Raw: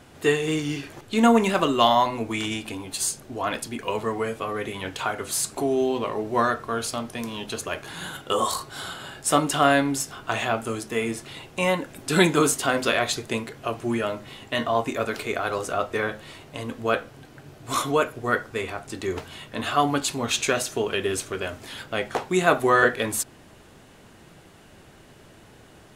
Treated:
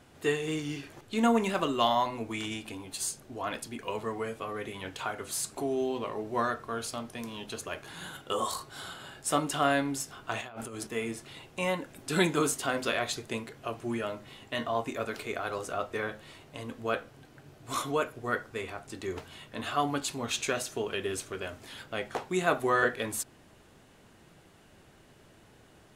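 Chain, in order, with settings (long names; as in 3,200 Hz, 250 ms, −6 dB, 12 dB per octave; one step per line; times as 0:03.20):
0:10.41–0:10.87: compressor whose output falls as the input rises −34 dBFS, ratio −1
level −7.5 dB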